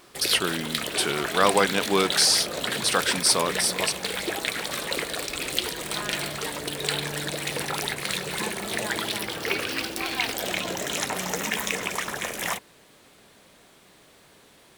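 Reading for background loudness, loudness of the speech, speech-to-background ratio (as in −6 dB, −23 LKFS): −28.0 LKFS, −23.0 LKFS, 5.0 dB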